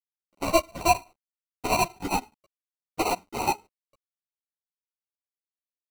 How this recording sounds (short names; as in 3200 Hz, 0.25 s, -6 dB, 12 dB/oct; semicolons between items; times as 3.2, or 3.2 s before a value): a quantiser's noise floor 10-bit, dither none; chopped level 9.5 Hz, depth 65%, duty 75%; aliases and images of a low sample rate 1700 Hz, jitter 0%; a shimmering, thickened sound